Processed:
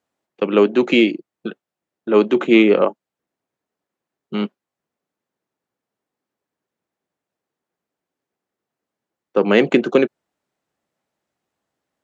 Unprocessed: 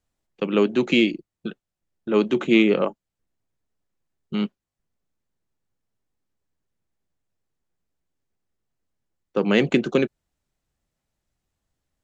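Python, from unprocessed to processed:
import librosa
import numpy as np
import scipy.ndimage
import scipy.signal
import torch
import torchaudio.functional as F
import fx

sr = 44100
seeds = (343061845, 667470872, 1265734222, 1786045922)

y = scipy.signal.sosfilt(scipy.signal.bessel(2, 330.0, 'highpass', norm='mag', fs=sr, output='sos'), x)
y = fx.high_shelf(y, sr, hz=2600.0, db=-10.5)
y = F.gain(torch.from_numpy(y), 8.5).numpy()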